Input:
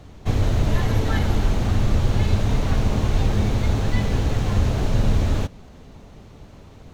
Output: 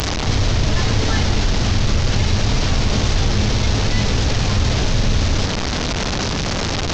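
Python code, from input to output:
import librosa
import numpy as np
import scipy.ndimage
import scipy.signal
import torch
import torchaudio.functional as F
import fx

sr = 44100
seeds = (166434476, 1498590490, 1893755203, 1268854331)

y = fx.delta_mod(x, sr, bps=32000, step_db=-22.5)
y = fx.high_shelf(y, sr, hz=4600.0, db=12.0)
y = fx.env_flatten(y, sr, amount_pct=50)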